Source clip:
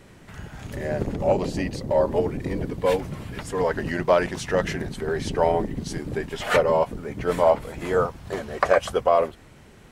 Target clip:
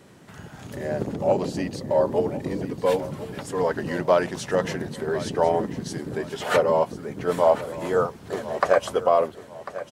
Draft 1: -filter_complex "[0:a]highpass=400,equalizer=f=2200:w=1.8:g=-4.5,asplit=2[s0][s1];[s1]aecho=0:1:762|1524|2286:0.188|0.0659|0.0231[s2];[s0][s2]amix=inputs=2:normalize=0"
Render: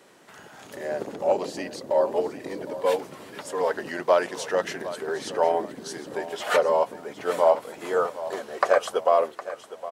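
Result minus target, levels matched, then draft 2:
125 Hz band -14.0 dB; echo 285 ms early
-filter_complex "[0:a]highpass=120,equalizer=f=2200:w=1.8:g=-4.5,asplit=2[s0][s1];[s1]aecho=0:1:1047|2094|3141:0.188|0.0659|0.0231[s2];[s0][s2]amix=inputs=2:normalize=0"

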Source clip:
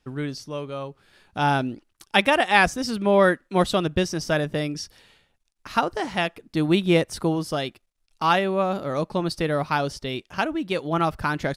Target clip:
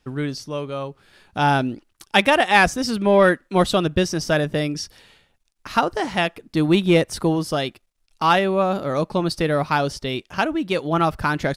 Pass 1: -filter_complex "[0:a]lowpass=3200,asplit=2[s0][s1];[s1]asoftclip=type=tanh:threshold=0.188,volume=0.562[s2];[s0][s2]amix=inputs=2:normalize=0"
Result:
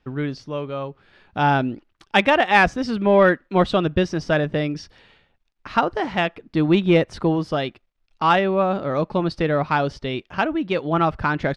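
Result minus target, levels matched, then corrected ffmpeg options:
4 kHz band -3.5 dB
-filter_complex "[0:a]asplit=2[s0][s1];[s1]asoftclip=type=tanh:threshold=0.188,volume=0.562[s2];[s0][s2]amix=inputs=2:normalize=0"

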